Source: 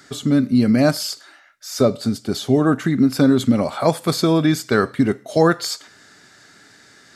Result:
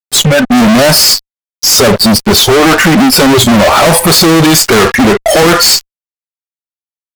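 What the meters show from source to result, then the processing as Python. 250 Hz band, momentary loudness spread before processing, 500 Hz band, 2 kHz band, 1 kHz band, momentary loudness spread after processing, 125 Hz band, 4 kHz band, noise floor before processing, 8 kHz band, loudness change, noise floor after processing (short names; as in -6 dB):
+8.5 dB, 10 LU, +11.5 dB, +17.5 dB, +15.5 dB, 3 LU, +9.0 dB, +21.0 dB, -50 dBFS, +22.5 dB, +12.5 dB, under -85 dBFS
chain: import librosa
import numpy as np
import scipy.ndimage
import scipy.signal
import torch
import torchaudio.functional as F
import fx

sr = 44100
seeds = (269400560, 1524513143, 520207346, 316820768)

y = fx.noise_reduce_blind(x, sr, reduce_db=28)
y = fx.fuzz(y, sr, gain_db=41.0, gate_db=-47.0)
y = y * librosa.db_to_amplitude(8.5)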